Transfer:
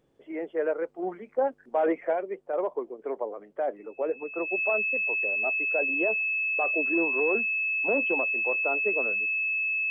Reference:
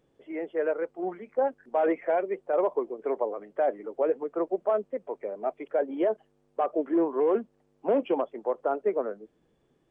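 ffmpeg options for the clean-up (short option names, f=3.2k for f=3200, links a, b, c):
-af "bandreject=f=2.6k:w=30,asetnsamples=n=441:p=0,asendcmd='2.13 volume volume 3.5dB',volume=0dB"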